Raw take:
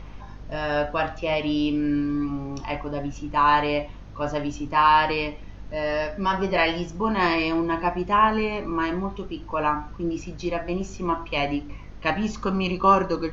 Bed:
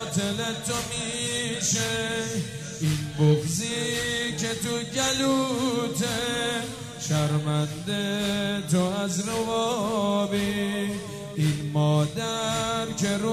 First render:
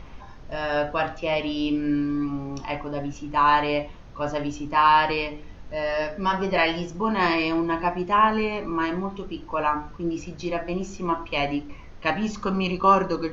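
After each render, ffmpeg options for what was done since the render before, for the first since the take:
ffmpeg -i in.wav -af "bandreject=frequency=50:width_type=h:width=4,bandreject=frequency=100:width_type=h:width=4,bandreject=frequency=150:width_type=h:width=4,bandreject=frequency=200:width_type=h:width=4,bandreject=frequency=250:width_type=h:width=4,bandreject=frequency=300:width_type=h:width=4,bandreject=frequency=350:width_type=h:width=4,bandreject=frequency=400:width_type=h:width=4,bandreject=frequency=450:width_type=h:width=4,bandreject=frequency=500:width_type=h:width=4" out.wav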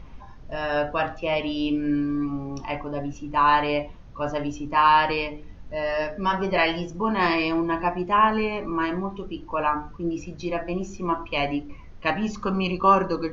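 ffmpeg -i in.wav -af "afftdn=noise_reduction=6:noise_floor=-42" out.wav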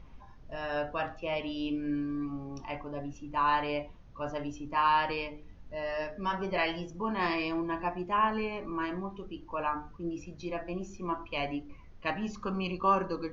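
ffmpeg -i in.wav -af "volume=-8.5dB" out.wav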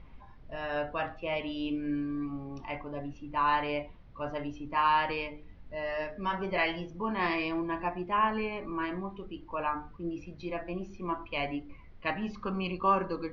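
ffmpeg -i in.wav -af "lowpass=frequency=4600:width=0.5412,lowpass=frequency=4600:width=1.3066,equalizer=frequency=2100:width_type=o:width=0.21:gain=5" out.wav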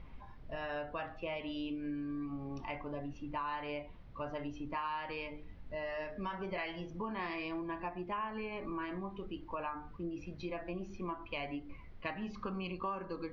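ffmpeg -i in.wav -af "acompressor=threshold=-37dB:ratio=5" out.wav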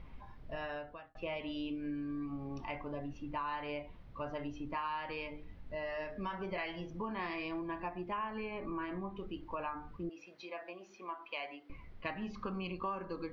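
ffmpeg -i in.wav -filter_complex "[0:a]asettb=1/sr,asplit=3[link_01][link_02][link_03];[link_01]atrim=end=8.514[link_04];[link_02]atrim=start=8.51:end=9.16,asetpts=PTS-STARTPTS,afade=type=in:duration=0.004:curve=qsin,afade=type=out:start_time=0.646:duration=0.004:curve=qsin,aemphasis=mode=reproduction:type=50fm[link_05];[link_03]atrim=start=9.156[link_06];[link_04][link_05]acrossfade=duration=0.004:curve1=hsin:curve2=qsin[link_07];[link_07][link_06]acrossfade=duration=0.004:curve1=qsin:curve2=hsin,asettb=1/sr,asplit=3[link_08][link_09][link_10];[link_08]atrim=end=10.094[link_11];[link_09]atrim=start=10.09:end=11.7,asetpts=PTS-STARTPTS,afade=type=in:duration=0.004:curve=qsin,afade=type=out:start_time=1.606:duration=0.004:curve=qsin,highpass=560[link_12];[link_10]atrim=start=11.696[link_13];[link_11][link_12]acrossfade=duration=0.004:curve1=hsin:curve2=qsin[link_14];[link_14][link_13]acrossfade=duration=0.004:curve1=qsin:curve2=hsin,asplit=2[link_15][link_16];[link_15]atrim=end=1.15,asetpts=PTS-STARTPTS,afade=type=out:start_time=0.61:duration=0.54[link_17];[link_16]atrim=start=1.15,asetpts=PTS-STARTPTS,afade=type=in:duration=0.004:curve=hsin[link_18];[link_17][link_18]concat=n=2:v=0:a=1" out.wav

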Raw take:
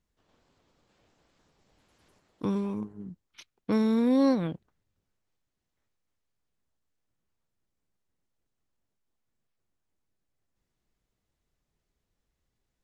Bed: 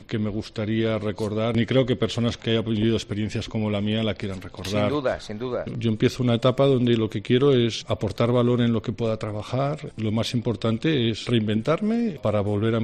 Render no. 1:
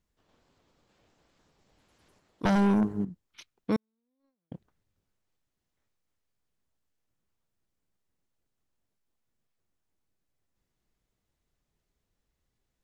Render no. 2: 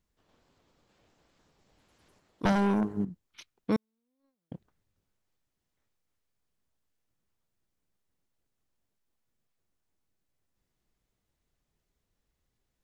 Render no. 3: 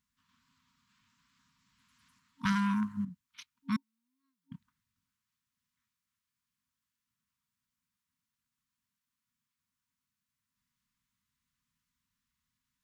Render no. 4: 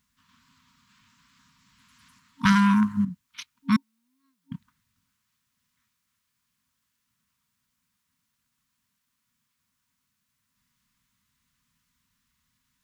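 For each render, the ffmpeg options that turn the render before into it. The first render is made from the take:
ffmpeg -i in.wav -filter_complex "[0:a]asettb=1/sr,asplit=3[link_01][link_02][link_03];[link_01]atrim=end=2.454[link_04];[link_02]atrim=start=2.45:end=3.05,asetpts=PTS-STARTPTS,afade=type=in:duration=0.004:curve=qsin,afade=type=out:start_time=0.596:duration=0.004:curve=qsin,aeval=exprs='0.106*sin(PI/2*2.82*val(0)/0.106)':channel_layout=same[link_05];[link_03]atrim=start=3.046[link_06];[link_04][link_05]acrossfade=duration=0.004:curve1=hsin:curve2=qsin[link_07];[link_07][link_06]acrossfade=duration=0.004:curve1=qsin:curve2=hsin,asettb=1/sr,asplit=3[link_08][link_09][link_10];[link_08]atrim=end=3.764[link_11];[link_09]atrim=start=3.76:end=4.52,asetpts=PTS-STARTPTS,afade=type=in:duration=0.004:curve=qsin,afade=type=out:start_time=0.756:duration=0.004:curve=qsin,agate=range=-59dB:threshold=-16dB:ratio=16:release=100:detection=peak[link_12];[link_10]atrim=start=4.516[link_13];[link_11][link_12]acrossfade=duration=0.004:curve1=hsin:curve2=qsin[link_14];[link_14][link_13]acrossfade=duration=0.004:curve1=qsin:curve2=hsin" out.wav
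ffmpeg -i in.wav -filter_complex "[0:a]asettb=1/sr,asplit=3[link_01][link_02][link_03];[link_01]atrim=end=2.524[link_04];[link_02]atrim=start=2.52:end=2.97,asetpts=PTS-STARTPTS,afade=type=in:duration=0.004:curve=qsin,afade=type=out:start_time=0.446:duration=0.004:curve=qsin,bass=frequency=250:gain=-5,treble=frequency=4000:gain=-2[link_05];[link_03]atrim=start=2.966[link_06];[link_04][link_05]acrossfade=duration=0.004:curve1=hsin:curve2=qsin[link_07];[link_07][link_06]acrossfade=duration=0.004:curve1=qsin:curve2=hsin" out.wav
ffmpeg -i in.wav -af "afftfilt=real='re*(1-between(b*sr/4096,270,920))':imag='im*(1-between(b*sr/4096,270,920))':win_size=4096:overlap=0.75,highpass=frequency=200:poles=1" out.wav
ffmpeg -i in.wav -af "volume=10.5dB" out.wav

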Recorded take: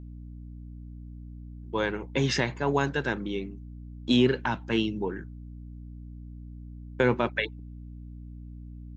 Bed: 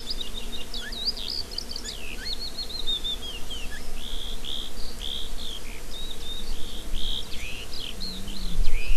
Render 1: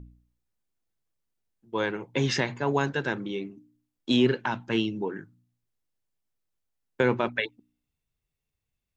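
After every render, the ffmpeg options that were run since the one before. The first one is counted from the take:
ffmpeg -i in.wav -af "bandreject=frequency=60:width_type=h:width=4,bandreject=frequency=120:width_type=h:width=4,bandreject=frequency=180:width_type=h:width=4,bandreject=frequency=240:width_type=h:width=4,bandreject=frequency=300:width_type=h:width=4" out.wav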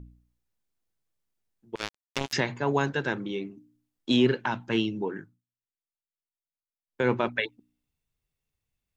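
ffmpeg -i in.wav -filter_complex "[0:a]asettb=1/sr,asplit=3[link_01][link_02][link_03];[link_01]atrim=end=1.754[link_04];[link_02]atrim=start=1.75:end=2.33,asetpts=PTS-STARTPTS,afade=type=in:duration=0.004:curve=qsin,afade=type=out:start_time=0.576:duration=0.004:curve=qsin,acrusher=bits=2:mix=0:aa=0.5[link_05];[link_03]atrim=start=2.326[link_06];[link_04][link_05]acrossfade=duration=0.004:curve1=hsin:curve2=qsin[link_07];[link_07][link_06]acrossfade=duration=0.004:curve1=qsin:curve2=hsin,asplit=3[link_08][link_09][link_10];[link_08]atrim=end=5.42,asetpts=PTS-STARTPTS,afade=type=out:start_time=5.19:duration=0.23:silence=0.0749894[link_11];[link_09]atrim=start=5.42:end=6.87,asetpts=PTS-STARTPTS,volume=-22.5dB[link_12];[link_10]atrim=start=6.87,asetpts=PTS-STARTPTS,afade=type=in:duration=0.23:silence=0.0749894[link_13];[link_11][link_12][link_13]concat=n=3:v=0:a=1" out.wav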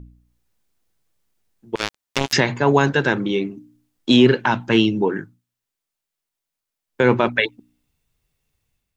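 ffmpeg -i in.wav -filter_complex "[0:a]dynaudnorm=framelen=120:gausssize=5:maxgain=6.5dB,asplit=2[link_01][link_02];[link_02]alimiter=limit=-12dB:level=0:latency=1,volume=-2.5dB[link_03];[link_01][link_03]amix=inputs=2:normalize=0" out.wav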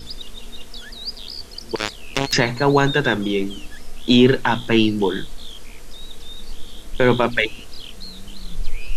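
ffmpeg -i in.wav -i bed.wav -filter_complex "[1:a]volume=-2.5dB[link_01];[0:a][link_01]amix=inputs=2:normalize=0" out.wav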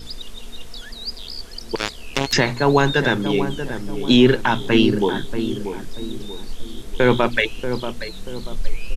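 ffmpeg -i in.wav -filter_complex "[0:a]asplit=2[link_01][link_02];[link_02]adelay=635,lowpass=frequency=1000:poles=1,volume=-8dB,asplit=2[link_03][link_04];[link_04]adelay=635,lowpass=frequency=1000:poles=1,volume=0.44,asplit=2[link_05][link_06];[link_06]adelay=635,lowpass=frequency=1000:poles=1,volume=0.44,asplit=2[link_07][link_08];[link_08]adelay=635,lowpass=frequency=1000:poles=1,volume=0.44,asplit=2[link_09][link_10];[link_10]adelay=635,lowpass=frequency=1000:poles=1,volume=0.44[link_11];[link_01][link_03][link_05][link_07][link_09][link_11]amix=inputs=6:normalize=0" out.wav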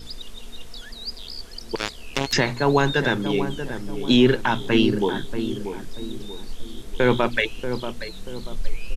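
ffmpeg -i in.wav -af "volume=-3dB" out.wav

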